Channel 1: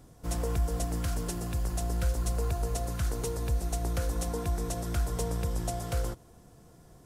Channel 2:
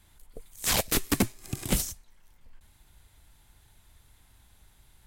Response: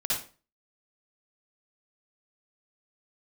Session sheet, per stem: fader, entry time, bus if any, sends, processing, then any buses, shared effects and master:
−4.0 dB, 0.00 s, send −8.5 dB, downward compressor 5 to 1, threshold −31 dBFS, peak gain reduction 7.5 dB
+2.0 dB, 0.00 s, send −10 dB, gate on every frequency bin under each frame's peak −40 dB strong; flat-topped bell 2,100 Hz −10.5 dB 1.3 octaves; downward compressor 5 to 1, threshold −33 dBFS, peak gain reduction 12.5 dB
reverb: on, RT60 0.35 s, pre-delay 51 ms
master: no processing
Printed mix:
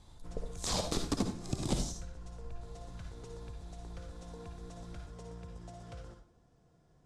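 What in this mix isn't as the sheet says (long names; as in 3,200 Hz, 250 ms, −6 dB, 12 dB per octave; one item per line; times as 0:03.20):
stem 1 −4.0 dB → −15.5 dB
master: extra Bessel low-pass filter 5,500 Hz, order 4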